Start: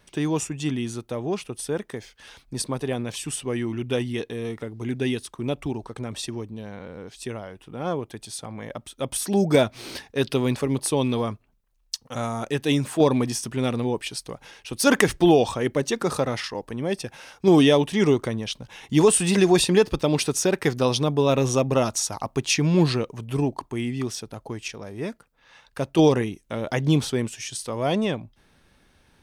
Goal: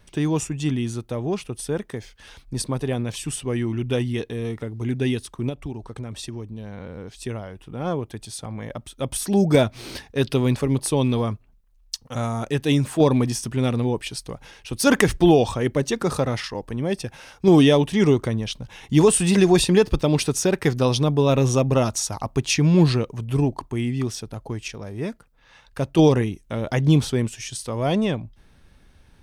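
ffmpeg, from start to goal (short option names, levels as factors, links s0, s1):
-filter_complex "[0:a]lowshelf=f=120:g=12,asettb=1/sr,asplit=3[s0][s1][s2];[s0]atrim=end=5.494[s3];[s1]atrim=start=5.49:end=6.78,asetpts=PTS-STARTPTS,afade=t=in:d=0.004:c=qsin,afade=t=out:st=1.286:d=0.004:c=qsin,acompressor=threshold=0.0224:ratio=2[s4];[s2]atrim=start=6.776[s5];[s3][s4]acrossfade=d=0.004:c1=hsin:c2=qsin[s6];[s6][s5]acrossfade=d=0.004:c1=qsin:c2=hsin"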